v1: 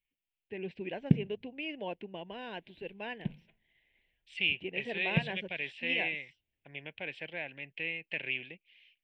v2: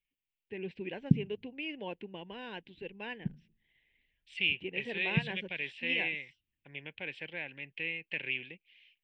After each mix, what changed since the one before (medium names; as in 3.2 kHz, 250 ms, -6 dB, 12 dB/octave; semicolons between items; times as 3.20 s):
background: add inverse Chebyshev low-pass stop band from 1.1 kHz, stop band 60 dB; master: add peaking EQ 660 Hz -8 dB 0.38 oct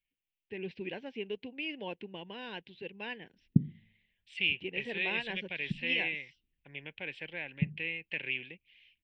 first voice: add resonant low-pass 5.2 kHz, resonance Q 2; background: entry +2.45 s